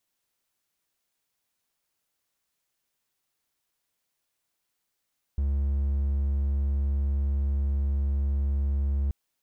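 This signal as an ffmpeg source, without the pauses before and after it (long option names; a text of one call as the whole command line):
ffmpeg -f lavfi -i "aevalsrc='0.0891*(1-4*abs(mod(69.7*t+0.25,1)-0.5))':duration=3.73:sample_rate=44100" out.wav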